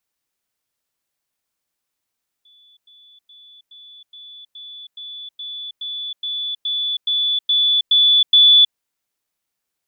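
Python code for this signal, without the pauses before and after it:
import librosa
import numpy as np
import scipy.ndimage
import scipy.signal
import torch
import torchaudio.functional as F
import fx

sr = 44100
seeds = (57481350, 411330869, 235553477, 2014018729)

y = fx.level_ladder(sr, hz=3460.0, from_db=-49.0, step_db=3.0, steps=15, dwell_s=0.32, gap_s=0.1)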